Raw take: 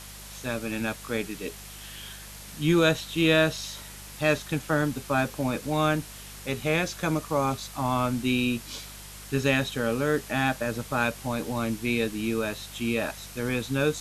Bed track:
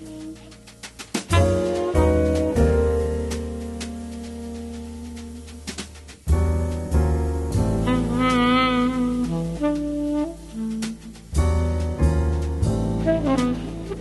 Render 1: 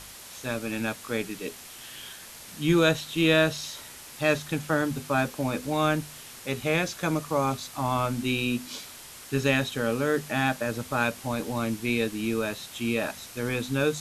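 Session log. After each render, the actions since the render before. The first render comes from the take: de-hum 50 Hz, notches 5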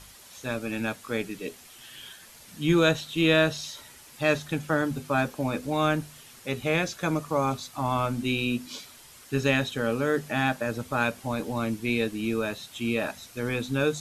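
noise reduction 7 dB, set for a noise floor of -45 dBFS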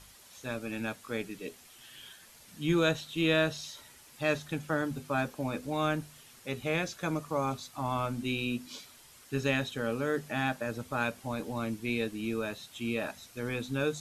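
trim -5.5 dB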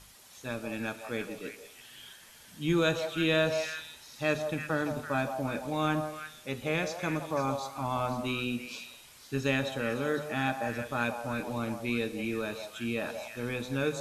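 on a send: repeats whose band climbs or falls 167 ms, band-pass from 710 Hz, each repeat 1.4 oct, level -3 dB; on the sum: Schroeder reverb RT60 0.89 s, combs from 26 ms, DRR 13.5 dB

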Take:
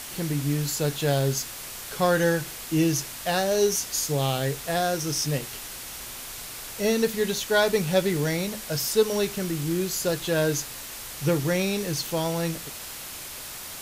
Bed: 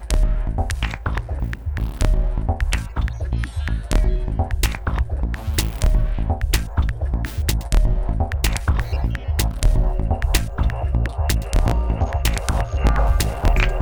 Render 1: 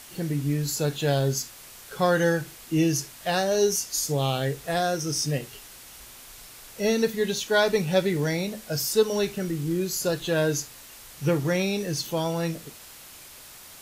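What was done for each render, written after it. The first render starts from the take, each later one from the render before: noise print and reduce 8 dB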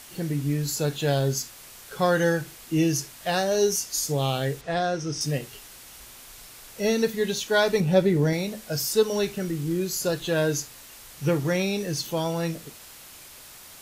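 4.61–5.21 s: distance through air 100 m; 7.80–8.33 s: tilt shelf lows +5 dB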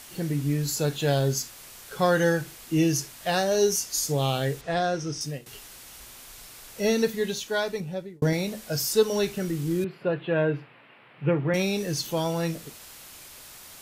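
4.85–5.46 s: fade out equal-power, to -16 dB; 6.99–8.22 s: fade out; 9.84–11.54 s: elliptic band-pass 130–2600 Hz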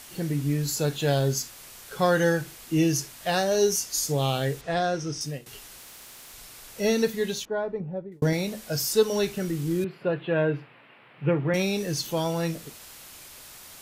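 5.79–6.34 s: spectrum-flattening compressor 10:1; 7.45–8.12 s: low-pass 1 kHz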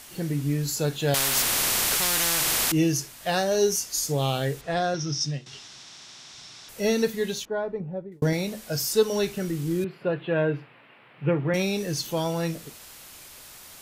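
1.14–2.72 s: spectrum-flattening compressor 10:1; 4.94–6.69 s: cabinet simulation 100–6900 Hz, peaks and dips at 140 Hz +7 dB, 490 Hz -8 dB, 3.6 kHz +7 dB, 5.5 kHz +8 dB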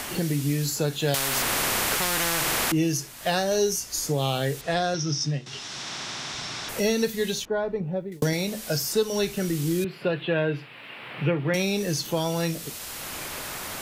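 three bands compressed up and down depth 70%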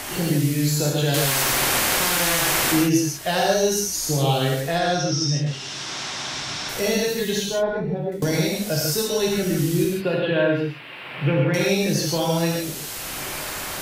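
gated-style reverb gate 190 ms flat, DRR -2.5 dB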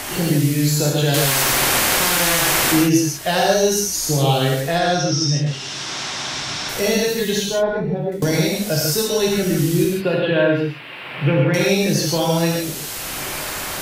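trim +3.5 dB

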